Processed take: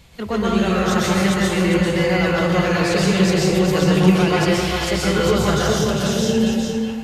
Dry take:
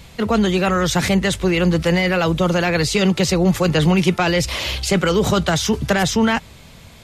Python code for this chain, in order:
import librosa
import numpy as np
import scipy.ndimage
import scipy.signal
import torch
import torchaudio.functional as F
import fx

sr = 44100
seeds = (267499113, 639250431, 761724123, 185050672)

y = fx.spec_repair(x, sr, seeds[0], start_s=5.65, length_s=0.71, low_hz=630.0, high_hz=2500.0, source='both')
y = y + 10.0 ** (-5.0 / 20.0) * np.pad(y, (int(402 * sr / 1000.0), 0))[:len(y)]
y = fx.rev_plate(y, sr, seeds[1], rt60_s=1.2, hf_ratio=0.6, predelay_ms=110, drr_db=-5.0)
y = y * librosa.db_to_amplitude(-7.5)